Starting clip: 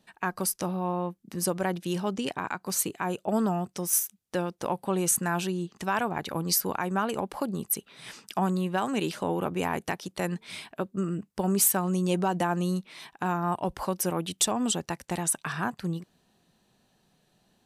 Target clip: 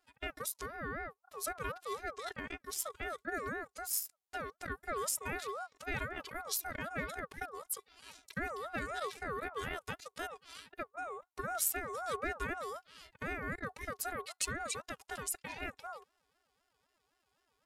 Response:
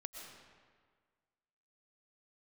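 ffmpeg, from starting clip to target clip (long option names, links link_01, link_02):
-af "afftfilt=real='hypot(re,im)*cos(PI*b)':imag='0':win_size=512:overlap=0.75,aeval=exprs='val(0)*sin(2*PI*920*n/s+920*0.2/3.9*sin(2*PI*3.9*n/s))':channel_layout=same,volume=-4dB"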